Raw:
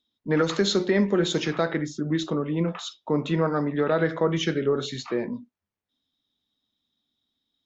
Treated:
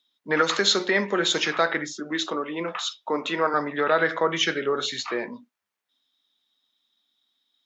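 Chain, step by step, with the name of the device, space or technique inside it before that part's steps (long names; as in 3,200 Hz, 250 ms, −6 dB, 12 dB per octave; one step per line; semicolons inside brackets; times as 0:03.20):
filter by subtraction (in parallel: low-pass filter 1,400 Hz 12 dB per octave + polarity inversion)
0:01.93–0:03.54: on the sum: high-pass filter 190 Hz 24 dB per octave
level +5.5 dB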